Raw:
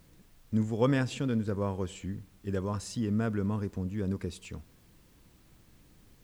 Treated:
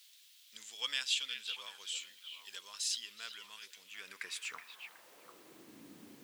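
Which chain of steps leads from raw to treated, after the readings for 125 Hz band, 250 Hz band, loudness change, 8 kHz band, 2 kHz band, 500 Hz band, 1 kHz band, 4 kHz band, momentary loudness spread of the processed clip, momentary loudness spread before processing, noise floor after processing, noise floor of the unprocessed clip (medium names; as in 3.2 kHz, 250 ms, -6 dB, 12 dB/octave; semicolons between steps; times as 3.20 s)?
under -40 dB, -30.0 dB, -7.5 dB, +6.0 dB, 0.0 dB, -26.5 dB, -13.0 dB, +11.0 dB, 23 LU, 13 LU, -62 dBFS, -61 dBFS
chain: high-pass sweep 3.4 kHz -> 260 Hz, 3.78–5.80 s; repeats whose band climbs or falls 372 ms, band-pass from 2.6 kHz, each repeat -1.4 oct, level -6 dB; trim +4.5 dB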